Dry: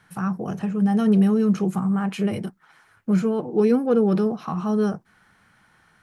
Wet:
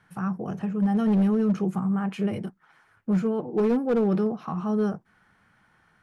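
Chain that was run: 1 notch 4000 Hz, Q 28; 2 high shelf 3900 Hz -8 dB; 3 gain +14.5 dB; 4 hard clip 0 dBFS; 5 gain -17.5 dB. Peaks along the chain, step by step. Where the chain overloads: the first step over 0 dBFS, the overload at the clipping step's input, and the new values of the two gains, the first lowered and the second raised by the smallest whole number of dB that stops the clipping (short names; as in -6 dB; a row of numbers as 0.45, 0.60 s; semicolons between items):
-9.5, -9.5, +5.0, 0.0, -17.5 dBFS; step 3, 5.0 dB; step 3 +9.5 dB, step 5 -12.5 dB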